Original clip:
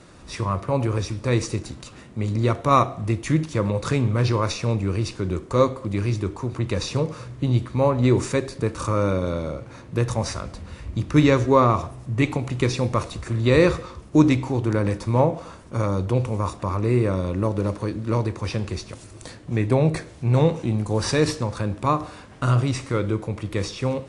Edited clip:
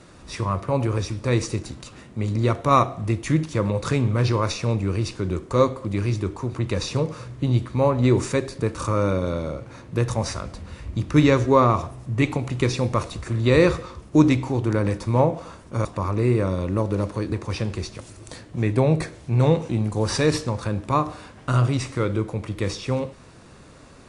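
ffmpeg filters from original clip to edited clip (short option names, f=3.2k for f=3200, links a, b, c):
-filter_complex "[0:a]asplit=3[a][b][c];[a]atrim=end=15.852[d];[b]atrim=start=16.508:end=17.982[e];[c]atrim=start=18.258[f];[d][e]acrossfade=d=0.004:c1=hsin:c2=hsin[g];[g][f]acrossfade=d=0.004:c1=hsin:c2=hsin"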